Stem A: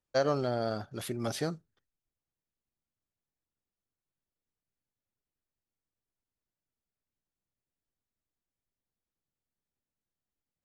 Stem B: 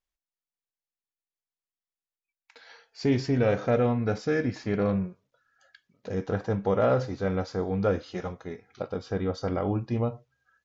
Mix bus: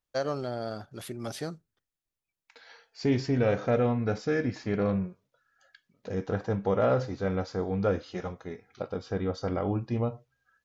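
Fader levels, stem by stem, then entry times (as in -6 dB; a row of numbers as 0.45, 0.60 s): -2.5, -1.5 dB; 0.00, 0.00 s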